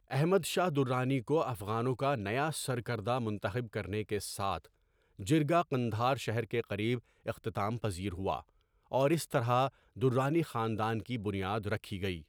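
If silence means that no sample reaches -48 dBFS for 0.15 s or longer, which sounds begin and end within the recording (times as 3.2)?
5.19–6.99
7.26–8.41
8.92–9.69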